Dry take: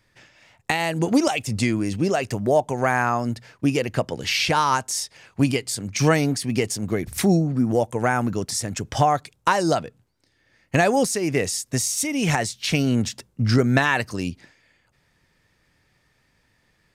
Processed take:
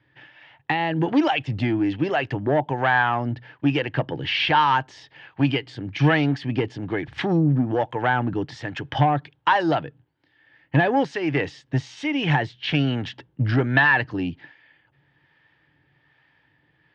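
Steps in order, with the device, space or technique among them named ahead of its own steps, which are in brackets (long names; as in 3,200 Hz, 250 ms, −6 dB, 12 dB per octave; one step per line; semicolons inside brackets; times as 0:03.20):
guitar amplifier with harmonic tremolo (two-band tremolo in antiphase 1.2 Hz, depth 50%, crossover 530 Hz; soft clipping −15.5 dBFS, distortion −15 dB; loudspeaker in its box 78–3,600 Hz, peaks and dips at 140 Hz +9 dB, 210 Hz −8 dB, 300 Hz +9 dB, 860 Hz +8 dB, 1,700 Hz +9 dB, 3,100 Hz +8 dB)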